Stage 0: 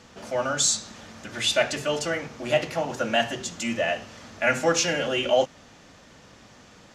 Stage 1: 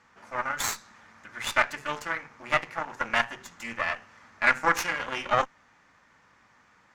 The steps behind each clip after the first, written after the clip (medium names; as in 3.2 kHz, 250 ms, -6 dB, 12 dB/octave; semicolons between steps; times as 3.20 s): Chebyshev shaper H 4 -12 dB, 7 -22 dB, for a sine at -7.5 dBFS; high-order bell 1.4 kHz +11.5 dB; trim -9 dB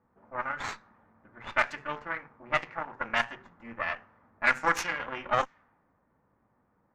level-controlled noise filter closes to 600 Hz, open at -19 dBFS; trim -2.5 dB